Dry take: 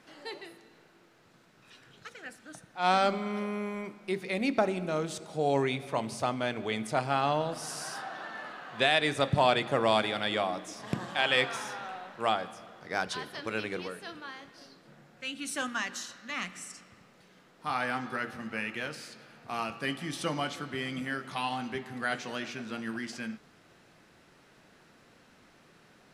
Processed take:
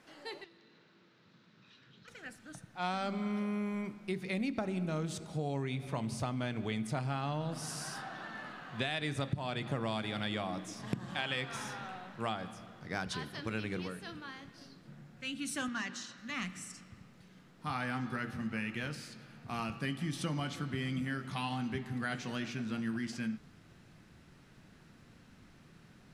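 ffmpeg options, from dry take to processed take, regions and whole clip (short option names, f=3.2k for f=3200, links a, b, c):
-filter_complex "[0:a]asettb=1/sr,asplit=3[a][b][c];[a]atrim=end=0.444[d];[b]atrim=start=0.44:end=2.08,asetpts=PTS-STARTPTS,afade=t=in:d=0.004:c=qsin,afade=t=out:st=1.636:d=0.004:c=qsin,acompressor=threshold=-55dB:ratio=2:attack=3.2:release=140:knee=1:detection=peak,aeval=exprs='clip(val(0),-1,0.00119)':c=same,highpass=130,equalizer=f=200:t=q:w=4:g=5,equalizer=f=730:t=q:w=4:g=-8,equalizer=f=3.8k:t=q:w=4:g=5,lowpass=f=5.5k:w=0.5412,lowpass=f=5.5k:w=1.3066[e];[c]atrim=start=2.076[f];[d][e]acrossfade=d=0.004:c1=hsin:c2=qsin[g];[g][f]acrossfade=d=0.004:c1=qsin:c2=hsin,asettb=1/sr,asplit=3[h][i][j];[h]atrim=end=15.684[k];[i]atrim=start=15.68:end=16.18,asetpts=PTS-STARTPTS,afade=t=in:d=0.004:c=qsin,afade=t=out:st=0.496:d=0.004:c=qsin,asoftclip=type=hard:threshold=-28.5dB,highpass=140,lowpass=6.4k[l];[j]atrim=start=16.176[m];[k][l]acrossfade=d=0.004:c1=hsin:c2=qsin[n];[n][m]acrossfade=d=0.004:c1=qsin:c2=hsin,asubboost=boost=4:cutoff=230,acompressor=threshold=-28dB:ratio=10,volume=-3dB"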